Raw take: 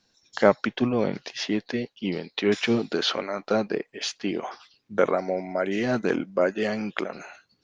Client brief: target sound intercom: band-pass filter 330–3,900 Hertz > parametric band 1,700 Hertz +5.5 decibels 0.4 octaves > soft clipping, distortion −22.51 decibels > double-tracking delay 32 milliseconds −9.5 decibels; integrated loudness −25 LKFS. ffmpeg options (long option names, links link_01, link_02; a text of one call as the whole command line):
ffmpeg -i in.wav -filter_complex "[0:a]highpass=330,lowpass=3900,equalizer=frequency=1700:width_type=o:width=0.4:gain=5.5,asoftclip=threshold=-7.5dB,asplit=2[link_01][link_02];[link_02]adelay=32,volume=-9.5dB[link_03];[link_01][link_03]amix=inputs=2:normalize=0,volume=2.5dB" out.wav